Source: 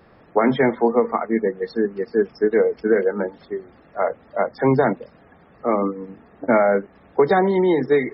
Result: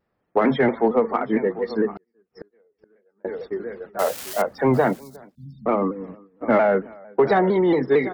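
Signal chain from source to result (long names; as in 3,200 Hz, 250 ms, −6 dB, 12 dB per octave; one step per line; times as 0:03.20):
0:03.99–0:04.42: spike at every zero crossing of −19 dBFS
on a send: single-tap delay 744 ms −15.5 dB
on the sum: noise gate −37 dBFS, range −23 dB
0:04.99–0:05.66: Chebyshev band-stop filter 230–3,800 Hz, order 5
slap from a distant wall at 62 metres, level −26 dB
in parallel at −7 dB: soft clipping −15 dBFS, distortion −12 dB
0:01.95–0:03.25: on the sum: gate with flip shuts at −22 dBFS, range −42 dB
pitch modulation by a square or saw wave saw down 4.4 Hz, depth 100 cents
level −3.5 dB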